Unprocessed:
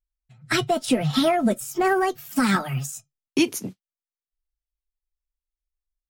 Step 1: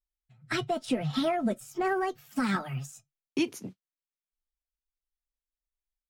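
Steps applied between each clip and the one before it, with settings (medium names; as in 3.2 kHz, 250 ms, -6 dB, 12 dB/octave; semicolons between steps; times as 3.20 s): treble shelf 7.1 kHz -10.5 dB; trim -7.5 dB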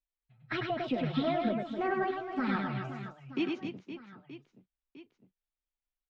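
low-pass 3.7 kHz 24 dB/octave; reverse bouncing-ball echo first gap 100 ms, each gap 1.6×, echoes 5; trim -4 dB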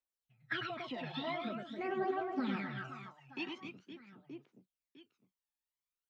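high-pass 380 Hz 6 dB/octave; phaser 0.45 Hz, delay 1.2 ms, feedback 66%; trim -5 dB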